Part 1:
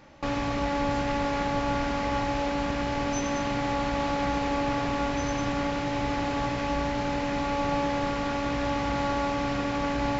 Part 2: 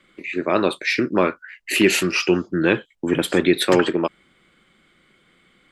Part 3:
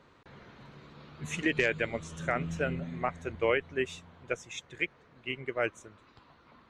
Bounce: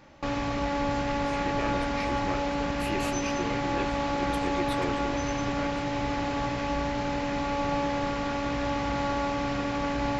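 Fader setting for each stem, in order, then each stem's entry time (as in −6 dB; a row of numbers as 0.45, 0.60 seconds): −1.0, −18.0, −12.0 decibels; 0.00, 1.10, 0.00 seconds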